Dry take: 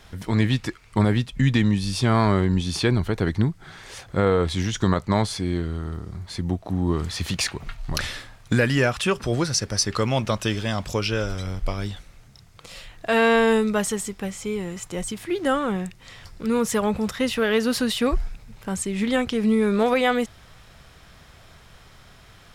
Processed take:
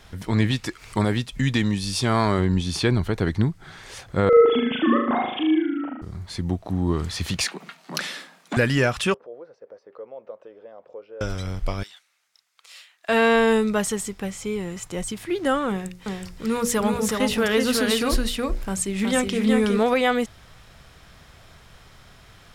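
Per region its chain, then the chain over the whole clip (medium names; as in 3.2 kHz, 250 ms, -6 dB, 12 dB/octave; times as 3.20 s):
0.51–2.39 s: tone controls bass -4 dB, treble +4 dB + upward compressor, threshold -31 dBFS
4.29–6.02 s: formants replaced by sine waves + flutter echo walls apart 6.6 m, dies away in 0.77 s
7.45–8.57 s: steep high-pass 160 Hz 96 dB/octave + transformer saturation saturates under 2.1 kHz
9.14–11.21 s: compression 2.5:1, threshold -29 dBFS + ladder band-pass 540 Hz, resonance 70%
11.83–13.09 s: high-pass 1.3 kHz + upward expansion, over -56 dBFS
15.69–19.79 s: treble shelf 5.6 kHz +4.5 dB + hum notches 60/120/180/240/300/360/420/480/540/600 Hz + delay 370 ms -3.5 dB
whole clip: none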